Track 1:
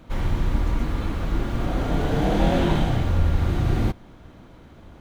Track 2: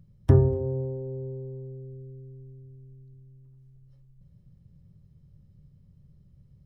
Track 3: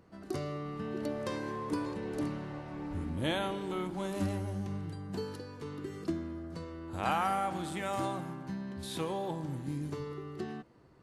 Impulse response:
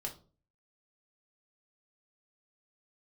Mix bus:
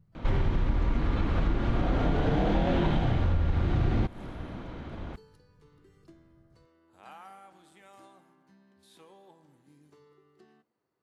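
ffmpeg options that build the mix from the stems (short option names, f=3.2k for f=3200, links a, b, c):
-filter_complex "[0:a]lowpass=4k,acontrast=57,adelay=150,volume=0.5dB[a];[1:a]volume=-7.5dB[b];[2:a]highpass=f=370:p=1,volume=-19dB,asplit=2[c][d];[d]volume=-10.5dB[e];[3:a]atrim=start_sample=2205[f];[e][f]afir=irnorm=-1:irlink=0[g];[a][b][c][g]amix=inputs=4:normalize=0,acompressor=threshold=-22dB:ratio=8"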